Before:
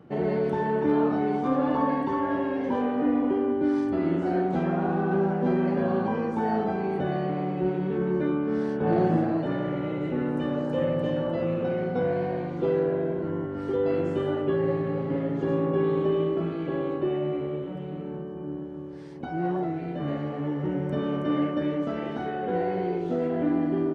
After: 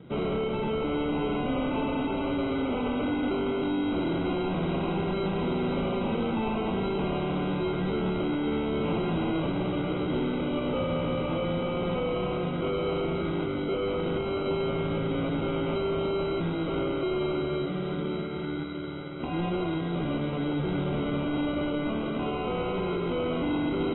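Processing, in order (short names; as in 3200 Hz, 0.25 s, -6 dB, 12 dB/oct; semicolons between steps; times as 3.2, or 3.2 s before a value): median filter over 25 samples; LPF 3900 Hz 12 dB/oct; notches 50/100/150/200/250/300/350 Hz; in parallel at -1 dB: limiter -20 dBFS, peak gain reduction 6.5 dB; on the sum: sample-and-hold 25×; hard clip -25 dBFS, distortion -7 dB; bell 1700 Hz -7.5 dB 2.4 oct; on a send: thinning echo 0.54 s, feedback 83%, high-pass 260 Hz, level -11.5 dB; on the sum: AAC 16 kbps 22050 Hz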